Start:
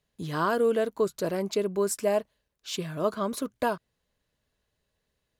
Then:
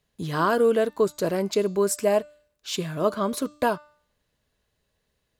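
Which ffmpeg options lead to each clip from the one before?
ffmpeg -i in.wav -af "bandreject=frequency=297.3:width_type=h:width=4,bandreject=frequency=594.6:width_type=h:width=4,bandreject=frequency=891.9:width_type=h:width=4,bandreject=frequency=1189.2:width_type=h:width=4,bandreject=frequency=1486.5:width_type=h:width=4,bandreject=frequency=1783.8:width_type=h:width=4,bandreject=frequency=2081.1:width_type=h:width=4,bandreject=frequency=2378.4:width_type=h:width=4,bandreject=frequency=2675.7:width_type=h:width=4,bandreject=frequency=2973:width_type=h:width=4,bandreject=frequency=3270.3:width_type=h:width=4,bandreject=frequency=3567.6:width_type=h:width=4,bandreject=frequency=3864.9:width_type=h:width=4,bandreject=frequency=4162.2:width_type=h:width=4,bandreject=frequency=4459.5:width_type=h:width=4,bandreject=frequency=4756.8:width_type=h:width=4,bandreject=frequency=5054.1:width_type=h:width=4,bandreject=frequency=5351.4:width_type=h:width=4,bandreject=frequency=5648.7:width_type=h:width=4,bandreject=frequency=5946:width_type=h:width=4,bandreject=frequency=6243.3:width_type=h:width=4,bandreject=frequency=6540.6:width_type=h:width=4,bandreject=frequency=6837.9:width_type=h:width=4,bandreject=frequency=7135.2:width_type=h:width=4,bandreject=frequency=7432.5:width_type=h:width=4,bandreject=frequency=7729.8:width_type=h:width=4,bandreject=frequency=8027.1:width_type=h:width=4,bandreject=frequency=8324.4:width_type=h:width=4,volume=4dB" out.wav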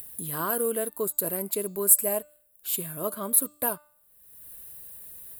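ffmpeg -i in.wav -af "acompressor=mode=upward:threshold=-35dB:ratio=2.5,aexciter=amount=11.9:drive=10:freq=9000,volume=-8.5dB" out.wav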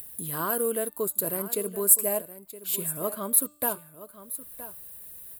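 ffmpeg -i in.wav -af "aecho=1:1:969:0.188" out.wav

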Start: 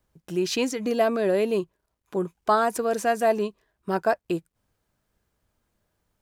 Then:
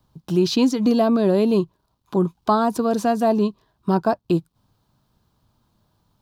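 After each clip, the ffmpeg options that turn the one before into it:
ffmpeg -i in.wav -filter_complex "[0:a]equalizer=frequency=125:width_type=o:width=1:gain=9,equalizer=frequency=250:width_type=o:width=1:gain=5,equalizer=frequency=500:width_type=o:width=1:gain=-4,equalizer=frequency=1000:width_type=o:width=1:gain=9,equalizer=frequency=2000:width_type=o:width=1:gain=-10,equalizer=frequency=4000:width_type=o:width=1:gain=9,equalizer=frequency=8000:width_type=o:width=1:gain=-5,acrossover=split=480[link_01][link_02];[link_02]acompressor=threshold=-38dB:ratio=1.5[link_03];[link_01][link_03]amix=inputs=2:normalize=0,volume=5dB" out.wav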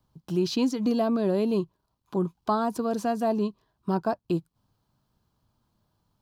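ffmpeg -i in.wav -af "bandreject=frequency=3700:width=21,volume=-7dB" out.wav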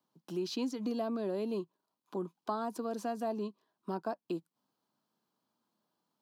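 ffmpeg -i in.wav -af "highpass=frequency=210:width=0.5412,highpass=frequency=210:width=1.3066,acompressor=threshold=-31dB:ratio=1.5,volume=-6dB" out.wav

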